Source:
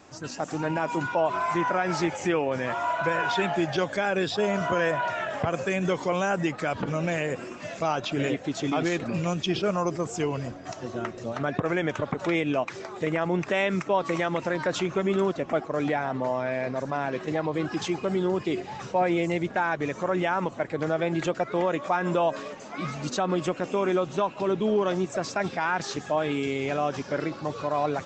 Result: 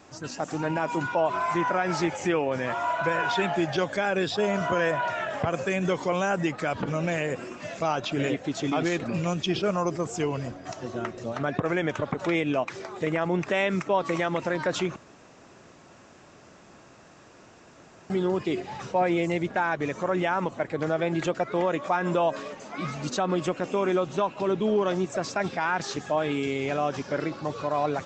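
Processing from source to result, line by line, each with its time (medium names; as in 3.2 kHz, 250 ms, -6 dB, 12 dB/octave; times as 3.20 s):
14.96–18.10 s: room tone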